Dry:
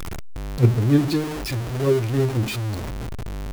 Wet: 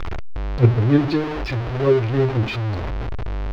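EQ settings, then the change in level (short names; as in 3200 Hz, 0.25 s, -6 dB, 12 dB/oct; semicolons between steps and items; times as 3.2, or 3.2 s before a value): air absorption 260 m; bell 190 Hz -8 dB 1.5 oct; +6.5 dB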